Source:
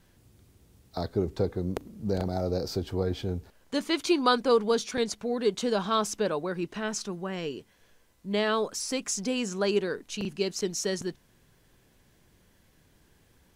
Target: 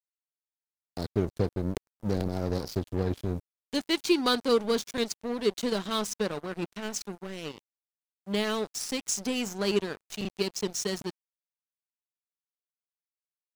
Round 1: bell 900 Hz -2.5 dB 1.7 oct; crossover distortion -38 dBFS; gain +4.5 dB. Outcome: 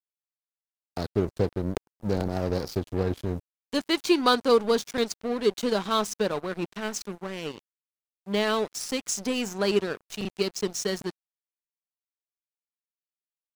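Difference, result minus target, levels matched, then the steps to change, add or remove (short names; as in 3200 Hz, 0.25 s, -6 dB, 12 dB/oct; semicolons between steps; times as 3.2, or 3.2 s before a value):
1000 Hz band +3.0 dB
change: bell 900 Hz -10 dB 1.7 oct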